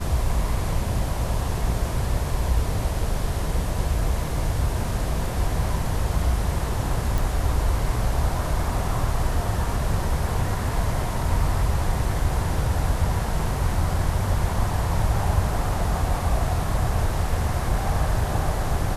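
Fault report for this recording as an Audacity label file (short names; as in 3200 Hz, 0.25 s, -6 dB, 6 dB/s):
7.180000	7.180000	pop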